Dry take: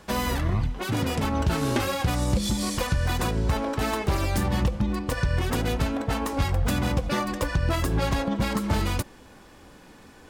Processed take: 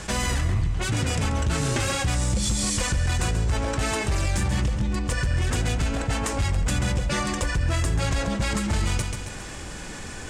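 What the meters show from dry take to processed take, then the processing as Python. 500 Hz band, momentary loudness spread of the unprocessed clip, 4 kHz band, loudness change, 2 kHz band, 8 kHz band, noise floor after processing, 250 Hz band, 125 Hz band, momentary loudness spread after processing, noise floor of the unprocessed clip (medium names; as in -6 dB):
-2.0 dB, 3 LU, +2.5 dB, +1.0 dB, +2.5 dB, +7.5 dB, -36 dBFS, -2.0 dB, +2.0 dB, 3 LU, -50 dBFS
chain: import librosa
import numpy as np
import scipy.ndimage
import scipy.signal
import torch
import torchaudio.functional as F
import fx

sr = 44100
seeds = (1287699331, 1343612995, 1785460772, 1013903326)

y = fx.graphic_eq(x, sr, hz=(250, 500, 1000, 4000, 8000), db=(-8, -5, -7, -4, 12))
y = np.clip(y, -10.0 ** (-21.0 / 20.0), 10.0 ** (-21.0 / 20.0))
y = fx.air_absorb(y, sr, metres=66.0)
y = fx.echo_feedback(y, sr, ms=136, feedback_pct=35, wet_db=-10)
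y = fx.env_flatten(y, sr, amount_pct=50)
y = y * librosa.db_to_amplitude(1.5)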